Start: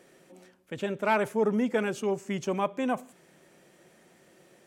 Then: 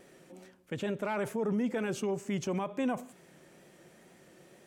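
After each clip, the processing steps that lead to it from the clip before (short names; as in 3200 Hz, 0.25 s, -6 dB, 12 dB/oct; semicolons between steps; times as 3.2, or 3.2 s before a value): wow and flutter 38 cents; low shelf 220 Hz +4.5 dB; limiter -24 dBFS, peak gain reduction 11 dB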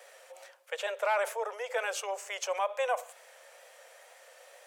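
steep high-pass 490 Hz 72 dB/oct; gain +6.5 dB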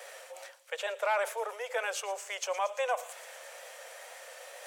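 reverse; upward compressor, threshold -38 dBFS; reverse; low shelf 420 Hz -3 dB; thin delay 0.115 s, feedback 83%, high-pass 3600 Hz, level -15 dB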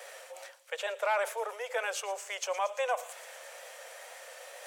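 nothing audible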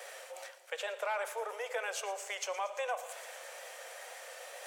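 compressor 2:1, threshold -36 dBFS, peak gain reduction 6.5 dB; on a send at -11 dB: reverb RT60 1.6 s, pre-delay 3 ms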